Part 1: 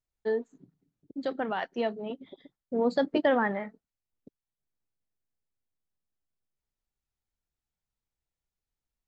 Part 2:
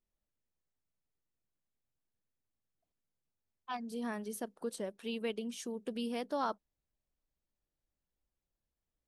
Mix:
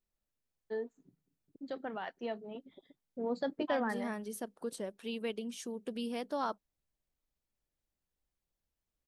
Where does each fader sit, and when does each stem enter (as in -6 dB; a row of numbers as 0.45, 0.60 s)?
-9.0, -0.5 dB; 0.45, 0.00 s